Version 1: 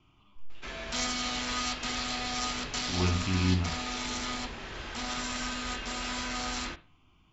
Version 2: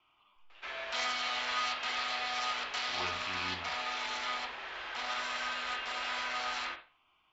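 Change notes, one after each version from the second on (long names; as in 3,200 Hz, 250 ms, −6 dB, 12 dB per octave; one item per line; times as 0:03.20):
background: send +8.5 dB
master: add three-way crossover with the lows and the highs turned down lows −24 dB, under 530 Hz, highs −19 dB, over 4,300 Hz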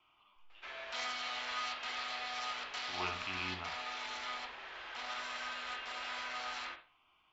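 background −5.5 dB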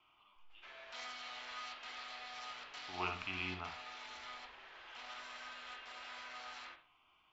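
background −8.0 dB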